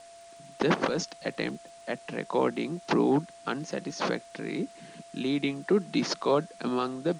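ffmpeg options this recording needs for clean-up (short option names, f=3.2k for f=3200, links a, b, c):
-af "adeclick=t=4,bandreject=f=680:w=30,afwtdn=0.002"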